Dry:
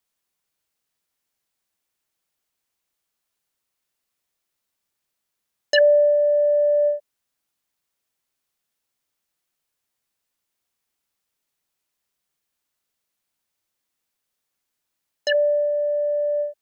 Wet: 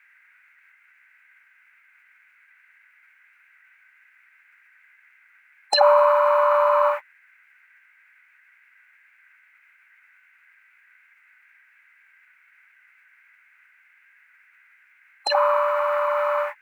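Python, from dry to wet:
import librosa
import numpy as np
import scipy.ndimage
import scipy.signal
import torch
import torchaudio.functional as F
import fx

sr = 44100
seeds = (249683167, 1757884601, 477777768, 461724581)

y = fx.dmg_noise_band(x, sr, seeds[0], low_hz=980.0, high_hz=1700.0, level_db=-57.0)
y = fx.formant_shift(y, sr, semitones=6)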